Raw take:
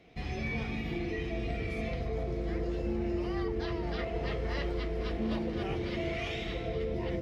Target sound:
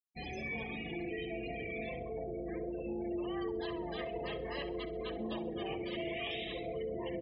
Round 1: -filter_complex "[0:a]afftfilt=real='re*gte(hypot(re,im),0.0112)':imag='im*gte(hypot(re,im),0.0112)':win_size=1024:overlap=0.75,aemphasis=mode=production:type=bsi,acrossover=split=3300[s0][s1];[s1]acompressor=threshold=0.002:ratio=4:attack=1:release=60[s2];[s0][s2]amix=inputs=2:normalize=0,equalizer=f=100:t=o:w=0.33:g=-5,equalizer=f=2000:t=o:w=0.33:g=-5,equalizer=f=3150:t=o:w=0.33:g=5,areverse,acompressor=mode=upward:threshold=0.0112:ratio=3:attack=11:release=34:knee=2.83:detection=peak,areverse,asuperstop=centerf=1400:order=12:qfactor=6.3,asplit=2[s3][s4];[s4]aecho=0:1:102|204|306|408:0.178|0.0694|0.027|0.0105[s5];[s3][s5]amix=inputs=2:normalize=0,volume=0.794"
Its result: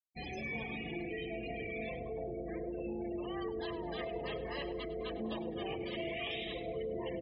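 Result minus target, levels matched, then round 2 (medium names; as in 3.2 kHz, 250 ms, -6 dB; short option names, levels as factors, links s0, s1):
echo 36 ms late
-filter_complex "[0:a]afftfilt=real='re*gte(hypot(re,im),0.0112)':imag='im*gte(hypot(re,im),0.0112)':win_size=1024:overlap=0.75,aemphasis=mode=production:type=bsi,acrossover=split=3300[s0][s1];[s1]acompressor=threshold=0.002:ratio=4:attack=1:release=60[s2];[s0][s2]amix=inputs=2:normalize=0,equalizer=f=100:t=o:w=0.33:g=-5,equalizer=f=2000:t=o:w=0.33:g=-5,equalizer=f=3150:t=o:w=0.33:g=5,areverse,acompressor=mode=upward:threshold=0.0112:ratio=3:attack=11:release=34:knee=2.83:detection=peak,areverse,asuperstop=centerf=1400:order=12:qfactor=6.3,asplit=2[s3][s4];[s4]aecho=0:1:66|132|198|264:0.178|0.0694|0.027|0.0105[s5];[s3][s5]amix=inputs=2:normalize=0,volume=0.794"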